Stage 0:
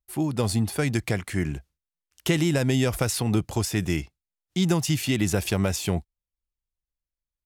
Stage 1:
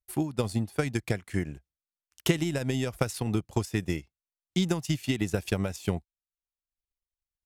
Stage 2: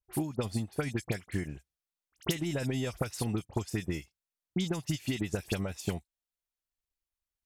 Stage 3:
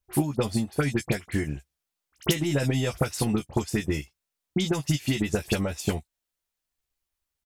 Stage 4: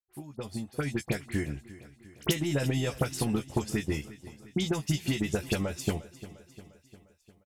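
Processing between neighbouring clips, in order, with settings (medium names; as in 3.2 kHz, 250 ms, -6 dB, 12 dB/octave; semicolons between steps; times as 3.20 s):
transient shaper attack +8 dB, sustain -9 dB; trim -7.5 dB
compression 4:1, threshold -28 dBFS, peak gain reduction 9.5 dB; phase dispersion highs, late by 50 ms, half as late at 2.7 kHz
doubling 14 ms -7 dB; trim +6.5 dB
fade-in on the opening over 1.19 s; feedback delay 352 ms, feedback 58%, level -17.5 dB; trim -3.5 dB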